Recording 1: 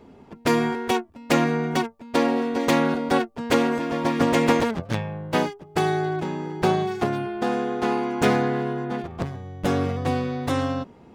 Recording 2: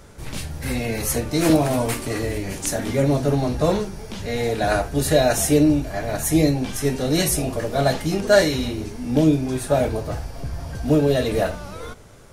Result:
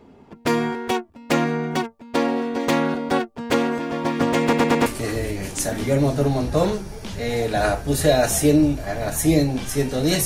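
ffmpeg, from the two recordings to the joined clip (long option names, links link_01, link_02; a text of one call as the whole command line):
ffmpeg -i cue0.wav -i cue1.wav -filter_complex "[0:a]apad=whole_dur=10.25,atrim=end=10.25,asplit=4[link_01][link_02][link_03][link_04];[link_01]atrim=end=4.532[link_05];[link_02]atrim=start=4.418:end=4.532[link_06];[link_03]atrim=start=4.418:end=4.532[link_07];[link_04]atrim=start=4.418:end=4.532[link_08];[1:a]atrim=start=1.928:end=7.32[link_09];[link_05][link_06]acrossfade=duration=0.004:curve1=hsin:curve2=hsin[link_10];[link_10][link_07]acrossfade=duration=0.004:curve1=hsin:curve2=hsin[link_11];[link_11][link_08]acrossfade=duration=0.004:curve1=hsin:curve2=hsin[link_12];[link_12][link_09]acrossfade=duration=0.004:curve1=hsin:curve2=hsin" out.wav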